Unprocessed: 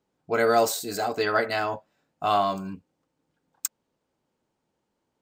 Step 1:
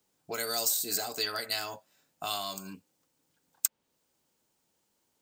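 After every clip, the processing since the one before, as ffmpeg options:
-filter_complex "[0:a]crystalizer=i=5.5:c=0,acrossover=split=180|3700[a][b][c];[a]acompressor=threshold=-54dB:ratio=4[d];[b]acompressor=threshold=-33dB:ratio=4[e];[c]acompressor=threshold=-24dB:ratio=4[f];[d][e][f]amix=inputs=3:normalize=0,volume=-4dB"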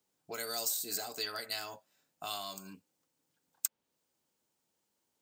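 -af "lowshelf=f=62:g=-6.5,volume=-5.5dB"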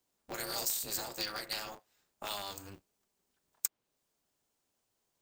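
-af "aeval=exprs='val(0)*sgn(sin(2*PI*100*n/s))':c=same"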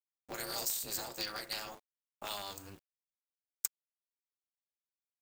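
-af "acrusher=bits=9:mix=0:aa=0.000001,volume=-1.5dB"

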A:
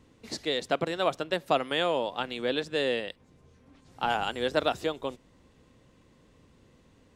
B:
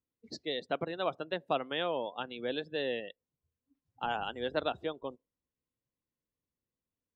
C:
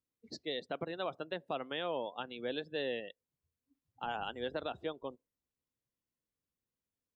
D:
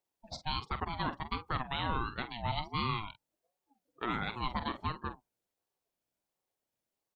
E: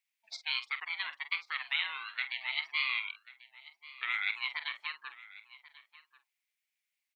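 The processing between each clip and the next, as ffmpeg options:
-af "afftdn=nr=29:nf=-38,volume=-6dB"
-af "alimiter=limit=-23.5dB:level=0:latency=1:release=59,volume=-2.5dB"
-filter_complex "[0:a]asplit=2[a][b];[b]adelay=46,volume=-11.5dB[c];[a][c]amix=inputs=2:normalize=0,aeval=exprs='val(0)*sin(2*PI*520*n/s+520*0.25/1.4*sin(2*PI*1.4*n/s))':c=same,volume=6dB"
-af "highpass=f=2.2k:t=q:w=4.5,aecho=1:1:1089:0.112"

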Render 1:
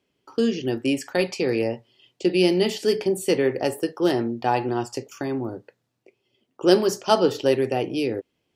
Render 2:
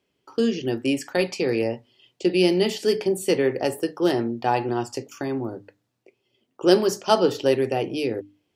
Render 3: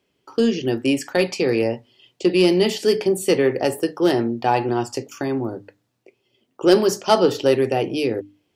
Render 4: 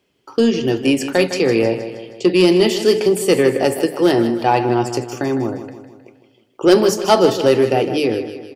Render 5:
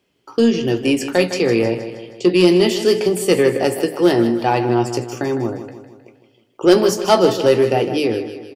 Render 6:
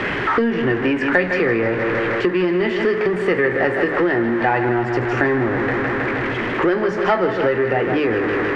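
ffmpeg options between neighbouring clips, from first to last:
-af "bandreject=f=50:t=h:w=6,bandreject=f=100:t=h:w=6,bandreject=f=150:t=h:w=6,bandreject=f=200:t=h:w=6,bandreject=f=250:t=h:w=6,bandreject=f=300:t=h:w=6"
-af "aeval=exprs='0.708*(cos(1*acos(clip(val(0)/0.708,-1,1)))-cos(1*PI/2))+0.0447*(cos(5*acos(clip(val(0)/0.708,-1,1)))-cos(5*PI/2))':c=same,volume=1.5dB"
-filter_complex "[0:a]asoftclip=type=tanh:threshold=-4.5dB,asplit=2[a][b];[b]aecho=0:1:157|314|471|628|785|942:0.282|0.147|0.0762|0.0396|0.0206|0.0107[c];[a][c]amix=inputs=2:normalize=0,volume=4dB"
-filter_complex "[0:a]asplit=2[a][b];[b]adelay=17,volume=-10.5dB[c];[a][c]amix=inputs=2:normalize=0,volume=-1dB"
-af "aeval=exprs='val(0)+0.5*0.1*sgn(val(0))':c=same,acompressor=threshold=-19dB:ratio=6,lowpass=f=1.8k:t=q:w=4.1,volume=2.5dB"

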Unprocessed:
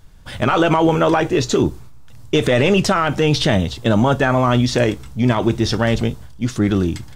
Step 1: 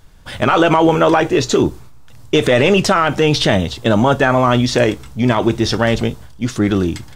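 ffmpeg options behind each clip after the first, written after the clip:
-af "bass=f=250:g=-4,treble=f=4k:g=-1,volume=3.5dB"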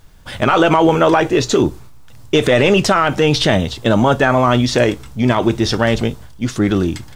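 -af "acrusher=bits=9:mix=0:aa=0.000001"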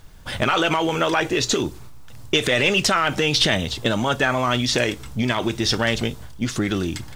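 -filter_complex "[0:a]acrossover=split=1700[a][b];[a]acompressor=threshold=-20dB:ratio=6[c];[b]aphaser=in_gain=1:out_gain=1:delay=3:decay=0.3:speed=1.7:type=sinusoidal[d];[c][d]amix=inputs=2:normalize=0"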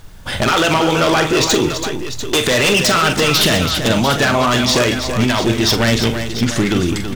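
-af "aeval=exprs='0.178*(abs(mod(val(0)/0.178+3,4)-2)-1)':c=same,aecho=1:1:44|206|331|695:0.355|0.112|0.376|0.282,volume=6.5dB"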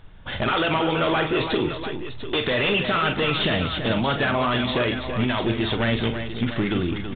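-af "aresample=8000,aresample=44100,volume=-7.5dB"

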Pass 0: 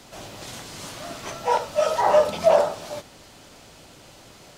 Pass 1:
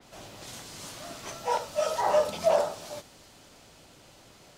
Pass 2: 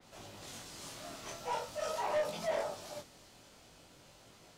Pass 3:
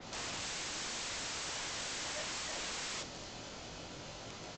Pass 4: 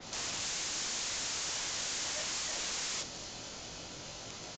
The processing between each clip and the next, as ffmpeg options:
-af "adynamicequalizer=threshold=0.00794:dfrequency=3900:dqfactor=0.7:tfrequency=3900:tqfactor=0.7:attack=5:release=100:ratio=0.375:range=2.5:mode=boostabove:tftype=highshelf,volume=-6.5dB"
-af "asoftclip=type=tanh:threshold=-25.5dB,flanger=delay=18:depth=7.8:speed=0.44,volume=-2dB"
-af "acompressor=threshold=-39dB:ratio=12,aresample=16000,aeval=exprs='(mod(251*val(0)+1,2)-1)/251':c=same,aresample=44100,volume=12dB"
-af "aemphasis=mode=production:type=50fm,aresample=16000,aresample=44100"

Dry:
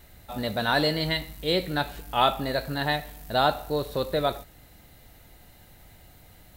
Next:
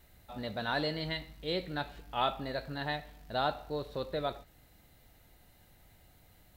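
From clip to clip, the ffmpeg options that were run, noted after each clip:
-filter_complex "[0:a]acrossover=split=5800[a][b];[b]acompressor=threshold=-53dB:ratio=4:attack=1:release=60[c];[a][c]amix=inputs=2:normalize=0,volume=-9dB"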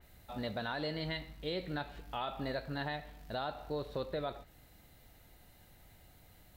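-af "alimiter=level_in=4.5dB:limit=-24dB:level=0:latency=1:release=156,volume=-4.5dB,adynamicequalizer=threshold=0.00141:dfrequency=3500:dqfactor=0.7:tfrequency=3500:tqfactor=0.7:attack=5:release=100:ratio=0.375:range=2:mode=cutabove:tftype=highshelf,volume=1dB"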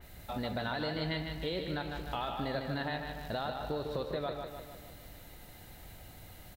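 -filter_complex "[0:a]acompressor=threshold=-44dB:ratio=2.5,asplit=2[a][b];[b]aecho=0:1:152|304|456|608|760|912|1064:0.501|0.271|0.146|0.0789|0.0426|0.023|0.0124[c];[a][c]amix=inputs=2:normalize=0,volume=8dB"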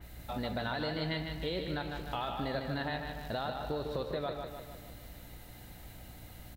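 -af "aeval=exprs='val(0)+0.00251*(sin(2*PI*60*n/s)+sin(2*PI*2*60*n/s)/2+sin(2*PI*3*60*n/s)/3+sin(2*PI*4*60*n/s)/4+sin(2*PI*5*60*n/s)/5)':c=same"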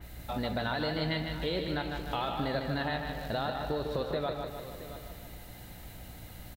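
-af "aecho=1:1:672:0.211,volume=3dB"

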